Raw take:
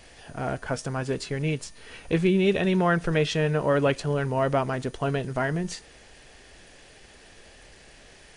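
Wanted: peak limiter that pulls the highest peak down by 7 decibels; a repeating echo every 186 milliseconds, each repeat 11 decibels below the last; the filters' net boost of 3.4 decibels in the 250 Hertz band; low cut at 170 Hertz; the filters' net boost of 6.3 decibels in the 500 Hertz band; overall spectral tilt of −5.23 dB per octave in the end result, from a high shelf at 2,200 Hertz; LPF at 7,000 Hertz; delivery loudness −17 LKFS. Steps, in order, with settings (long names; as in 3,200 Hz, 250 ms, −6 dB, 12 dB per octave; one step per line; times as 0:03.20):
high-pass filter 170 Hz
low-pass filter 7,000 Hz
parametric band 250 Hz +5 dB
parametric band 500 Hz +7 dB
high-shelf EQ 2,200 Hz −7.5 dB
brickwall limiter −12.5 dBFS
repeating echo 186 ms, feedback 28%, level −11 dB
level +6.5 dB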